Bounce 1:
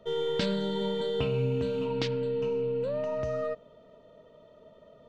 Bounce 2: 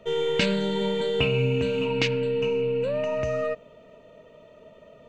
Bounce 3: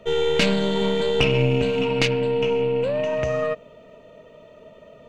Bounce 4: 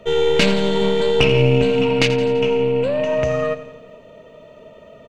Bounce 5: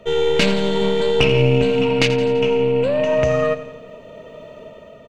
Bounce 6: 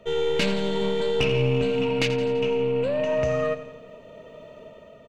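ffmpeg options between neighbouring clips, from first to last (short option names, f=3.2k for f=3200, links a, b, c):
-af "superequalizer=11b=1.58:12b=3.16:15b=1.78,volume=4.5dB"
-af "aeval=exprs='(tanh(6.31*val(0)+0.7)-tanh(0.7))/6.31':c=same,volume=7.5dB"
-af "aecho=1:1:84|168|252|336|420|504:0.211|0.127|0.0761|0.0457|0.0274|0.0164,volume=3.5dB"
-af "dynaudnorm=f=220:g=7:m=8dB,volume=-1dB"
-af "asoftclip=type=tanh:threshold=-5dB,volume=-6dB"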